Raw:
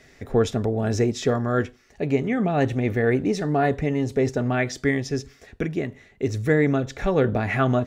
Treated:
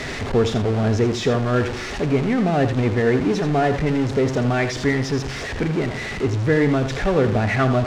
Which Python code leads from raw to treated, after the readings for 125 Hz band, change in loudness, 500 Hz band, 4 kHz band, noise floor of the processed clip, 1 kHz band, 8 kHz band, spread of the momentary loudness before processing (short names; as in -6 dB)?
+4.0 dB, +3.0 dB, +2.5 dB, +7.0 dB, -29 dBFS, +3.5 dB, +3.0 dB, 8 LU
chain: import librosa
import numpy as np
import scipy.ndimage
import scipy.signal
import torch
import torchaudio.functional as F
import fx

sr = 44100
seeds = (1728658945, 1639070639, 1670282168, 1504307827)

y = x + 0.5 * 10.0 ** (-22.0 / 20.0) * np.sign(x)
y = fx.air_absorb(y, sr, metres=100.0)
y = y + 10.0 ** (-10.0 / 20.0) * np.pad(y, (int(82 * sr / 1000.0), 0))[:len(y)]